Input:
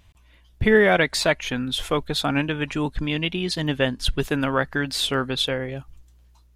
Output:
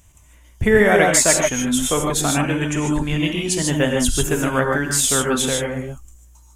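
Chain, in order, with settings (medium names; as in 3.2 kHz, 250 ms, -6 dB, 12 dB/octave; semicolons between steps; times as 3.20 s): resonant high shelf 5.5 kHz +9 dB, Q 3; gated-style reverb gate 170 ms rising, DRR 0.5 dB; trim +1.5 dB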